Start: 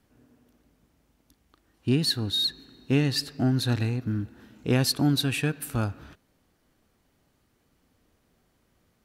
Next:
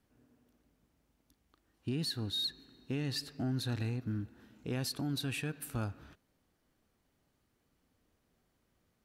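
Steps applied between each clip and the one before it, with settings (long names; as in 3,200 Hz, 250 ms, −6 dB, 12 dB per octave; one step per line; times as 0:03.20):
brickwall limiter −19.5 dBFS, peak gain reduction 7 dB
level −8 dB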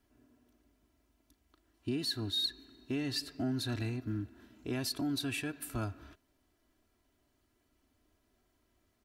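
comb filter 3 ms, depth 66%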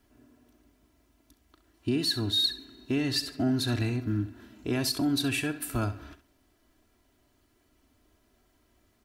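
flutter between parallel walls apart 11.4 metres, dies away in 0.3 s
level +7 dB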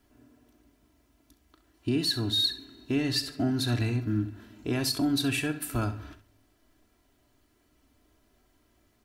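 convolution reverb RT60 0.35 s, pre-delay 7 ms, DRR 12.5 dB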